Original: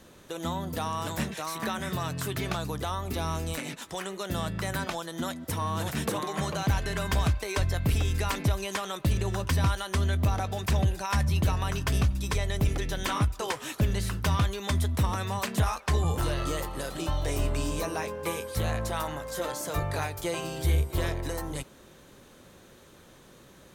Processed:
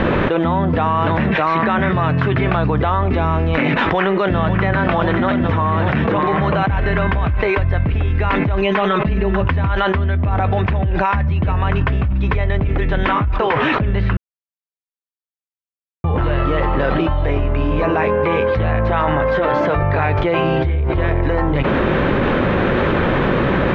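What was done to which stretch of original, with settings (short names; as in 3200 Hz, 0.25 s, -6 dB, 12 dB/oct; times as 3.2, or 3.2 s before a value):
3.72–4.75 echo throw 0.55 s, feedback 70%, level -7.5 dB
8.61–9.41 comb 4.7 ms, depth 85%
14.17–16.04 mute
whole clip: inverse Chebyshev low-pass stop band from 9600 Hz, stop band 70 dB; fast leveller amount 100%; gain +4 dB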